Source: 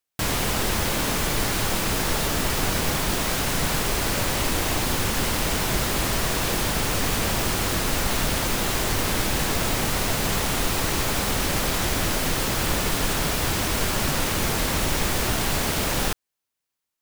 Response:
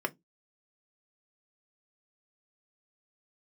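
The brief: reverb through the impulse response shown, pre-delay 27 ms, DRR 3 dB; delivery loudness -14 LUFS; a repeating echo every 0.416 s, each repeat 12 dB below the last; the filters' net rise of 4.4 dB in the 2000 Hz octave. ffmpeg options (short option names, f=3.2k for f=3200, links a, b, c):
-filter_complex "[0:a]equalizer=f=2k:t=o:g=5.5,aecho=1:1:416|832|1248:0.251|0.0628|0.0157,asplit=2[a][b];[1:a]atrim=start_sample=2205,adelay=27[c];[b][c]afir=irnorm=-1:irlink=0,volume=-9.5dB[d];[a][d]amix=inputs=2:normalize=0,volume=6.5dB"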